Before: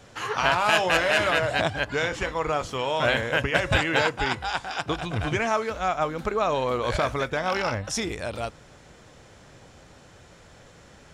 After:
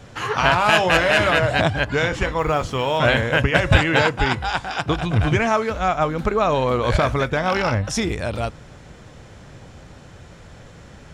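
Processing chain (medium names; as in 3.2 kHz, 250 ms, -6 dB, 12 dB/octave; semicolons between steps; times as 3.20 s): 2.38–2.99 s: modulation noise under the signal 34 dB; tone controls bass +6 dB, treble -3 dB; trim +5 dB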